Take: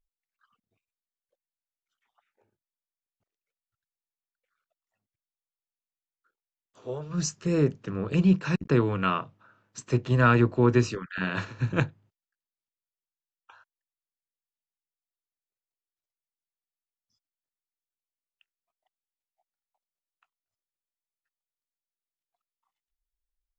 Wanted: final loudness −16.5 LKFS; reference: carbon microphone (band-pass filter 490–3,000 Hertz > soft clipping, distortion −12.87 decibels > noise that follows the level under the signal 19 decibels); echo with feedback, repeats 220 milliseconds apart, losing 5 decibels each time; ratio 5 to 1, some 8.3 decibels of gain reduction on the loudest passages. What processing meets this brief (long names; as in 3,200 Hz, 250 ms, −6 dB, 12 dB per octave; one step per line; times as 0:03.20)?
downward compressor 5 to 1, threshold −25 dBFS
band-pass filter 490–3,000 Hz
repeating echo 220 ms, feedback 56%, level −5 dB
soft clipping −28.5 dBFS
noise that follows the level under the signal 19 dB
level +22 dB